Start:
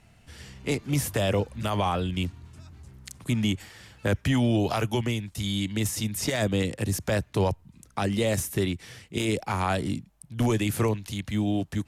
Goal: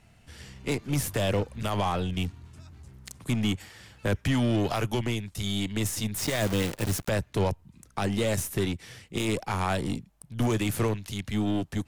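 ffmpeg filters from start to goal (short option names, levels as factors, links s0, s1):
-filter_complex "[0:a]aeval=exprs='0.188*(cos(1*acos(clip(val(0)/0.188,-1,1)))-cos(1*PI/2))+0.00473*(cos(5*acos(clip(val(0)/0.188,-1,1)))-cos(5*PI/2))+0.0119*(cos(8*acos(clip(val(0)/0.188,-1,1)))-cos(8*PI/2))':c=same,asettb=1/sr,asplit=3[s0][s1][s2];[s0]atrim=end=6.184[s3];[s1]atrim=start=6.18:end=7.09,asetpts=PTS-STARTPTS,afade=t=in:d=0.004:c=qsin,afade=t=out:st=0.906:d=0.004:c=qsin,acrusher=bits=6:dc=4:mix=0:aa=0.000001[s4];[s2]atrim=start=7.086[s5];[s3][s4]acrossfade=d=0.004:c1=hsin:c2=qsin[s6];[s6][s5]acrossfade=d=0.004:c1=qsin:c2=hsin,volume=0.794"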